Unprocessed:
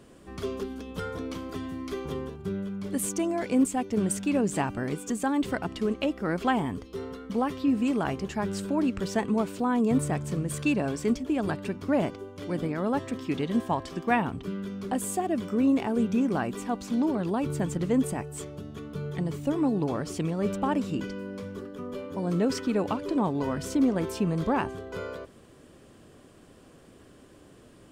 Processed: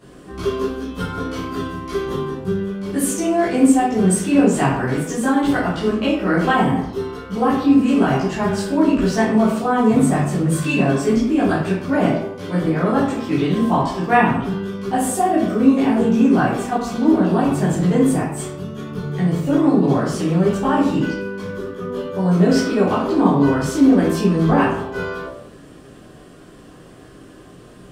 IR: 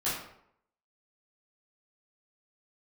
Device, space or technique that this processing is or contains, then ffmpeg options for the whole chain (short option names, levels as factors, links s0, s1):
bathroom: -filter_complex "[1:a]atrim=start_sample=2205[s0];[0:a][s0]afir=irnorm=-1:irlink=0,volume=1.41"